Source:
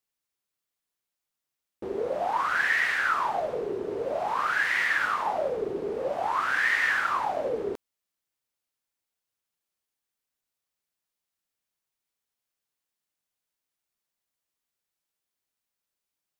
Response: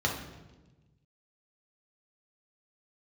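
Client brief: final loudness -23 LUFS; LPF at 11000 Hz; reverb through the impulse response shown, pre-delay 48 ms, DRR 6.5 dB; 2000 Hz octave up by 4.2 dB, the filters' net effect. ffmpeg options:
-filter_complex "[0:a]lowpass=11k,equalizer=f=2k:t=o:g=5,asplit=2[a][b];[1:a]atrim=start_sample=2205,adelay=48[c];[b][c]afir=irnorm=-1:irlink=0,volume=-16dB[d];[a][d]amix=inputs=2:normalize=0,volume=-0.5dB"

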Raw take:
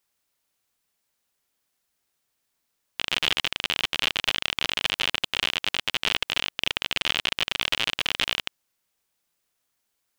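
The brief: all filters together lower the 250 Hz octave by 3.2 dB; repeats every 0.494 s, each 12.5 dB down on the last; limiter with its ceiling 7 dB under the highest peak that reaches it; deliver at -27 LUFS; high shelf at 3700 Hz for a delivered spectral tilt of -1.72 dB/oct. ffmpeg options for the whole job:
-af "equalizer=f=250:t=o:g=-4.5,highshelf=f=3.7k:g=3,alimiter=limit=-9.5dB:level=0:latency=1,aecho=1:1:494|988|1482:0.237|0.0569|0.0137,volume=0.5dB"

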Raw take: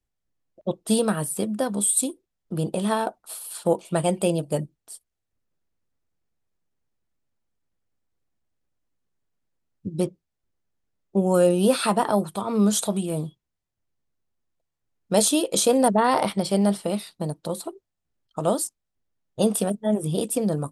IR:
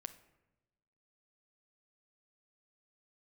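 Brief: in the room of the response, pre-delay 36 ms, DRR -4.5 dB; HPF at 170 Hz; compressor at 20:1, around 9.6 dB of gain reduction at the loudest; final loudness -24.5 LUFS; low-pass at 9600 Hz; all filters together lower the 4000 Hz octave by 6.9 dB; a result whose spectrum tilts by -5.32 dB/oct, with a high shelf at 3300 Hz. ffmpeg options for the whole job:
-filter_complex "[0:a]highpass=170,lowpass=9.6k,highshelf=f=3.3k:g=-6.5,equalizer=f=4k:t=o:g=-4,acompressor=threshold=-23dB:ratio=20,asplit=2[a][b];[1:a]atrim=start_sample=2205,adelay=36[c];[b][c]afir=irnorm=-1:irlink=0,volume=8.5dB[d];[a][d]amix=inputs=2:normalize=0,volume=0.5dB"

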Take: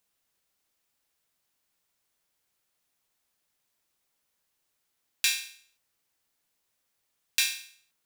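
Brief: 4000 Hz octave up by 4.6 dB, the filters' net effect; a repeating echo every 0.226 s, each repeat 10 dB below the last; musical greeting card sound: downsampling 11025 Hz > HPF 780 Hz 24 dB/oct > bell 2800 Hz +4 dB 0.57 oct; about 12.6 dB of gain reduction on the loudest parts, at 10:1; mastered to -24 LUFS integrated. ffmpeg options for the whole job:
-af "equalizer=f=4k:t=o:g=4,acompressor=threshold=-31dB:ratio=10,aecho=1:1:226|452|678|904:0.316|0.101|0.0324|0.0104,aresample=11025,aresample=44100,highpass=f=780:w=0.5412,highpass=f=780:w=1.3066,equalizer=f=2.8k:t=o:w=0.57:g=4,volume=13.5dB"

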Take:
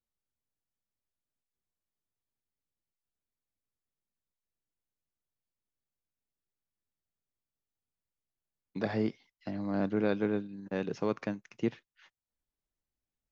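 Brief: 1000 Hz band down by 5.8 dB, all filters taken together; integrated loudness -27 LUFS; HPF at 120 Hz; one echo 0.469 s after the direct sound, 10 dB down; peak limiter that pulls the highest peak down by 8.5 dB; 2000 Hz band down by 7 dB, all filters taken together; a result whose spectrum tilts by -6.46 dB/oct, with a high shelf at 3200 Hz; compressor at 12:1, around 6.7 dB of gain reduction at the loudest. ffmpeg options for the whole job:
-af "highpass=120,equalizer=f=1k:t=o:g=-7,equalizer=f=2k:t=o:g=-9,highshelf=f=3.2k:g=7,acompressor=threshold=-32dB:ratio=12,alimiter=level_in=7.5dB:limit=-24dB:level=0:latency=1,volume=-7.5dB,aecho=1:1:469:0.316,volume=16dB"

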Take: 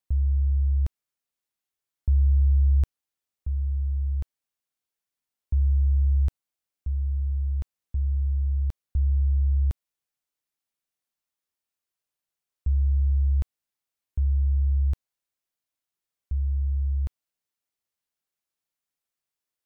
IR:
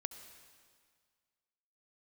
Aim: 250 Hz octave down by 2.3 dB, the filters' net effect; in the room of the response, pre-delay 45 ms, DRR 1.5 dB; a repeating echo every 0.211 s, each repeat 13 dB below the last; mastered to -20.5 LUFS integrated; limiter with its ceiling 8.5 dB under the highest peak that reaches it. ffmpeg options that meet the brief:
-filter_complex "[0:a]equalizer=f=250:t=o:g=-7,alimiter=limit=-24dB:level=0:latency=1,aecho=1:1:211|422|633:0.224|0.0493|0.0108,asplit=2[a][b];[1:a]atrim=start_sample=2205,adelay=45[c];[b][c]afir=irnorm=-1:irlink=0,volume=0.5dB[d];[a][d]amix=inputs=2:normalize=0,volume=7dB"

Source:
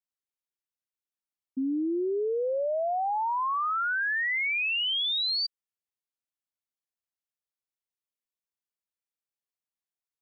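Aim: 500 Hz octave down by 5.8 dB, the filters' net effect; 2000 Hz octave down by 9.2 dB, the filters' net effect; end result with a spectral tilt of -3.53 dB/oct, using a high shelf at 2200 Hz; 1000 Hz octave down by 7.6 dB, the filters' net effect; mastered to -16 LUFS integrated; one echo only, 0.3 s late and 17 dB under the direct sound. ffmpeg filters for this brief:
-af "equalizer=f=500:t=o:g=-5.5,equalizer=f=1k:t=o:g=-5,equalizer=f=2k:t=o:g=-7,highshelf=f=2.2k:g=-5.5,aecho=1:1:300:0.141,volume=18dB"

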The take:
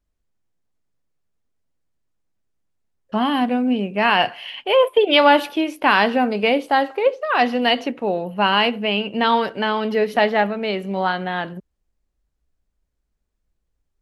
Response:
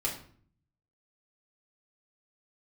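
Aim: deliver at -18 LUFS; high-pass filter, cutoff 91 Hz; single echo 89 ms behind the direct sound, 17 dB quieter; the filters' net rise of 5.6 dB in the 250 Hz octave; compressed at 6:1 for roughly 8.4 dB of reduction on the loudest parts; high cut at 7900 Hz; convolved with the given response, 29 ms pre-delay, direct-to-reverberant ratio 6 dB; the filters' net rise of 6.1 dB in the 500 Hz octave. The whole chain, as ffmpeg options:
-filter_complex "[0:a]highpass=91,lowpass=7.9k,equalizer=f=250:t=o:g=5,equalizer=f=500:t=o:g=6,acompressor=threshold=-13dB:ratio=6,aecho=1:1:89:0.141,asplit=2[a][b];[1:a]atrim=start_sample=2205,adelay=29[c];[b][c]afir=irnorm=-1:irlink=0,volume=-11dB[d];[a][d]amix=inputs=2:normalize=0"

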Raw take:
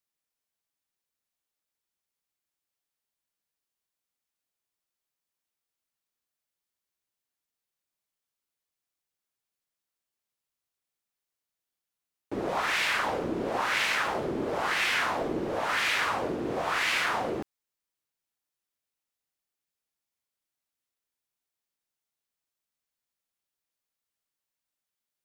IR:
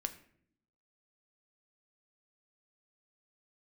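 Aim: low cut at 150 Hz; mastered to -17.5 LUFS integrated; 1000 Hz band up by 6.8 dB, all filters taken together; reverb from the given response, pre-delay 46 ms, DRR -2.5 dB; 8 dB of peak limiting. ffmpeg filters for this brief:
-filter_complex "[0:a]highpass=150,equalizer=f=1k:t=o:g=8.5,alimiter=limit=-19dB:level=0:latency=1,asplit=2[a][b];[1:a]atrim=start_sample=2205,adelay=46[c];[b][c]afir=irnorm=-1:irlink=0,volume=3dB[d];[a][d]amix=inputs=2:normalize=0,volume=6dB"

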